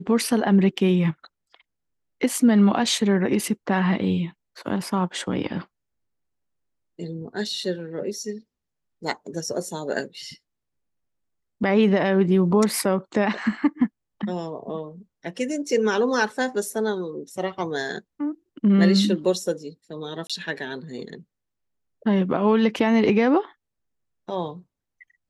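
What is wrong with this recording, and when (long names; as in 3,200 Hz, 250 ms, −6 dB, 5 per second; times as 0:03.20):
0:20.27–0:20.30: drop-out 26 ms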